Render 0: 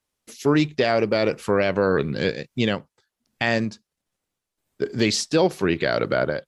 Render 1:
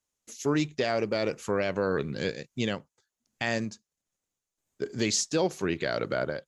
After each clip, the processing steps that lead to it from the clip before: bell 6700 Hz +11.5 dB 0.38 oct; gain -7.5 dB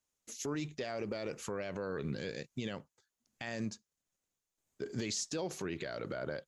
limiter -26 dBFS, peak gain reduction 11 dB; gain -2 dB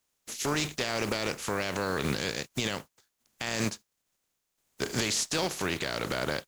spectral contrast lowered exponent 0.51; gain +8 dB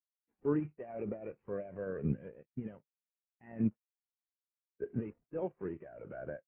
CVSD 16 kbps; spectral expander 2.5:1; gain -2 dB

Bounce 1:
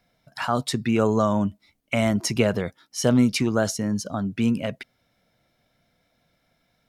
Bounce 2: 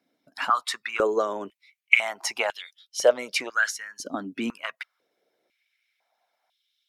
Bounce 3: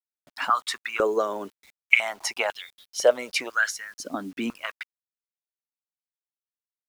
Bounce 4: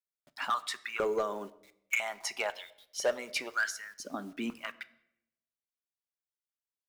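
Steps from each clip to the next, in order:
dynamic EQ 2100 Hz, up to +6 dB, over -40 dBFS, Q 0.87; harmonic-percussive split harmonic -10 dB; stepped high-pass 2 Hz 280–3300 Hz; gain -3.5 dB
bit-crush 9-bit
overloaded stage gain 16.5 dB; reverb RT60 0.75 s, pre-delay 5 ms, DRR 11.5 dB; gain -7 dB

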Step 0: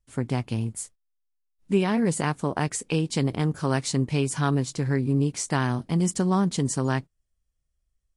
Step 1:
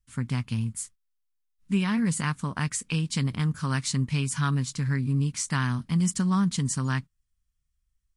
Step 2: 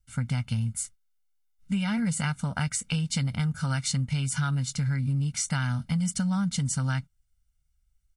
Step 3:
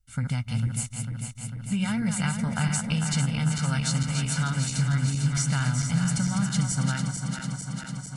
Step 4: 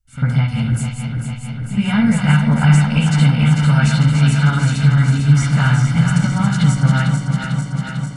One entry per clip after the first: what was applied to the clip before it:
band shelf 500 Hz -13.5 dB
comb 1.4 ms, depth 93%; compressor, threshold -24 dBFS, peak gain reduction 7 dB
regenerating reverse delay 0.224 s, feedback 84%, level -6 dB
reverb, pre-delay 47 ms, DRR -12 dB; gain -1 dB

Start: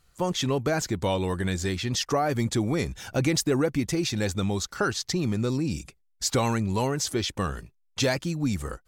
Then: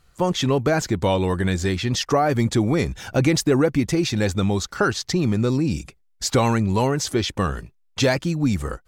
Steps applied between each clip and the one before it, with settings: high shelf 4300 Hz -6 dB; gain +6 dB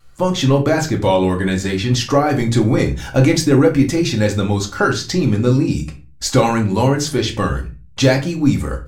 reverb RT60 0.30 s, pre-delay 4 ms, DRR 1.5 dB; vibrato 0.75 Hz 12 cents; gain +2 dB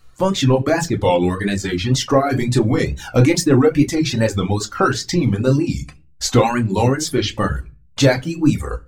wow and flutter 110 cents; reverb removal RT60 0.79 s

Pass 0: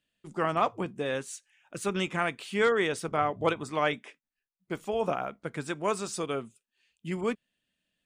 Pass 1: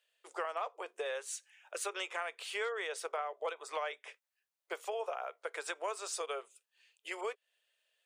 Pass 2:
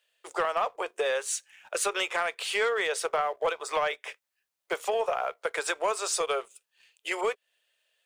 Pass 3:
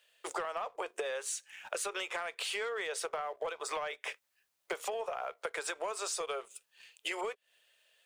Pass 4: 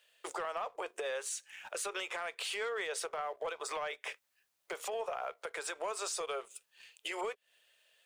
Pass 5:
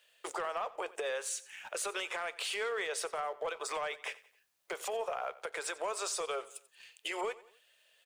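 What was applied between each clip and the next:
steep high-pass 440 Hz 48 dB/oct; compressor 5:1, threshold -39 dBFS, peak gain reduction 16 dB; gain +3 dB
sample leveller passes 1; gain +7 dB
in parallel at -3 dB: limiter -26.5 dBFS, peak gain reduction 10 dB; on the sum: compressor 10:1, threshold -34 dBFS, peak gain reduction 13.5 dB
limiter -29 dBFS, peak gain reduction 7 dB
feedback echo 90 ms, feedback 44%, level -19 dB; gain +1.5 dB

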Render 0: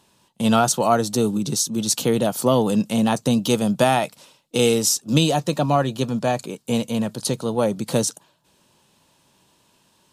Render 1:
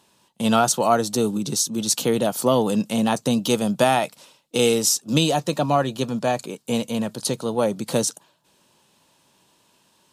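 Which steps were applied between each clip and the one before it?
low shelf 120 Hz -8.5 dB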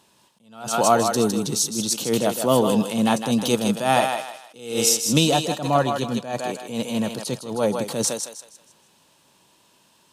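on a send: thinning echo 0.158 s, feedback 35%, high-pass 510 Hz, level -5 dB; on the sum: attack slew limiter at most 110 dB/s; gain +1 dB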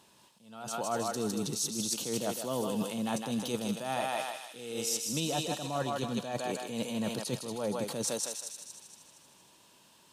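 reverse; compressor 6:1, threshold -28 dBFS, peak gain reduction 15 dB; reverse; thin delay 0.233 s, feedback 48%, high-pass 2800 Hz, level -7 dB; gain -2.5 dB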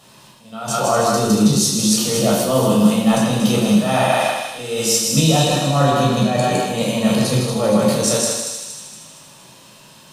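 reverb RT60 0.70 s, pre-delay 12 ms, DRR -4 dB; gain +8.5 dB

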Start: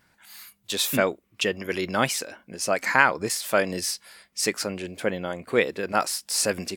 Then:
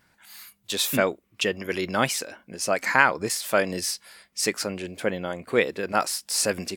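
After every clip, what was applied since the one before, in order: nothing audible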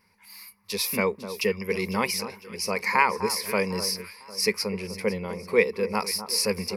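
ripple EQ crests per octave 0.86, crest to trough 15 dB; echo with dull and thin repeats by turns 0.251 s, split 1400 Hz, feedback 61%, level -11 dB; gain -4 dB

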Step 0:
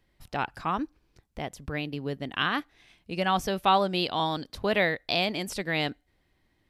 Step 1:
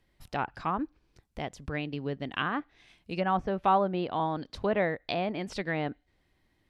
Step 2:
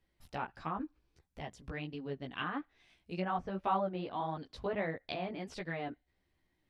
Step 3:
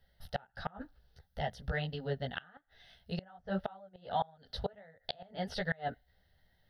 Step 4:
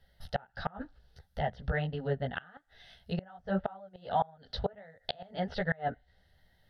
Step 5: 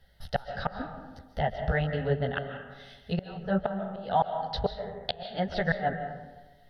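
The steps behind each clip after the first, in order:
treble ducked by the level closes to 1400 Hz, closed at -24 dBFS; gain -1 dB
chorus voices 2, 1.5 Hz, delay 14 ms, depth 3 ms; gain -4.5 dB
flipped gate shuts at -27 dBFS, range -28 dB; fixed phaser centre 1600 Hz, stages 8; gain +10 dB
treble ducked by the level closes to 2100 Hz, closed at -34.5 dBFS; gain +4 dB
reverb RT60 1.2 s, pre-delay 0.105 s, DRR 7 dB; gain +4 dB

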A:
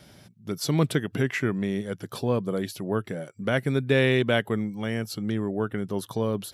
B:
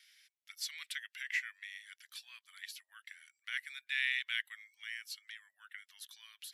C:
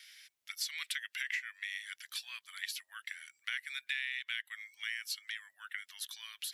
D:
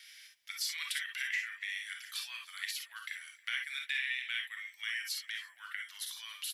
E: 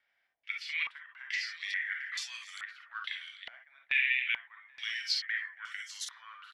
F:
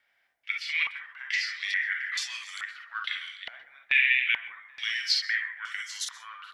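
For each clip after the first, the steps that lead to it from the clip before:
elliptic high-pass 1900 Hz, stop band 80 dB; high shelf 2500 Hz -10.5 dB; gain +1 dB
compressor 10:1, threshold -42 dBFS, peak gain reduction 14 dB; gain +8.5 dB
feedback echo 0.277 s, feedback 33%, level -22.5 dB; non-linear reverb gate 80 ms rising, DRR 1.5 dB
echo 0.793 s -14 dB; stepped low-pass 2.3 Hz 700–6700 Hz; gain -1.5 dB
plate-style reverb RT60 0.57 s, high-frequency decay 0.3×, pre-delay 0.115 s, DRR 14 dB; gain +6 dB

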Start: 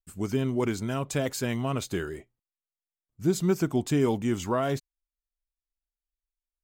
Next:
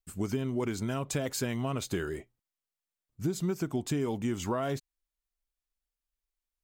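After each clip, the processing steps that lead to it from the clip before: compressor, threshold -29 dBFS, peak gain reduction 10.5 dB; gain +1.5 dB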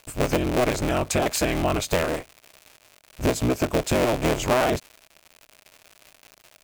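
cycle switcher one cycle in 3, inverted; crackle 210/s -43 dBFS; thirty-one-band EQ 200 Hz -7 dB, 630 Hz +7 dB, 2500 Hz +5 dB; gain +8.5 dB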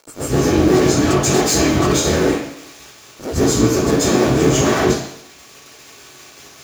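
soft clip -26.5 dBFS, distortion -7 dB; reverb RT60 0.70 s, pre-delay 0.126 s, DRR -11 dB; gain -4 dB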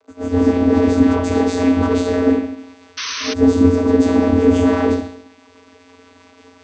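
air absorption 90 m; vocoder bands 16, square 89.1 Hz; painted sound noise, 2.97–3.34, 970–6300 Hz -27 dBFS; gain +2 dB

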